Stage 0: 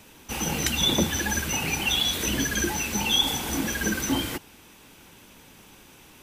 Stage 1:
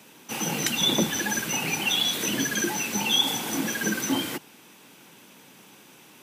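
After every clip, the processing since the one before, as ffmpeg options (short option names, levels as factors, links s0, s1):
-af "highpass=f=140:w=0.5412,highpass=f=140:w=1.3066"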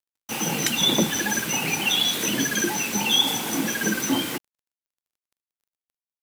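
-af "acrusher=bits=5:mix=0:aa=0.5,volume=1.33"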